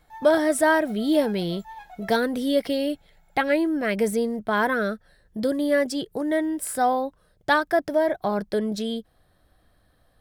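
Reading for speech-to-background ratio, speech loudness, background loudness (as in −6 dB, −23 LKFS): 20.0 dB, −24.0 LKFS, −44.0 LKFS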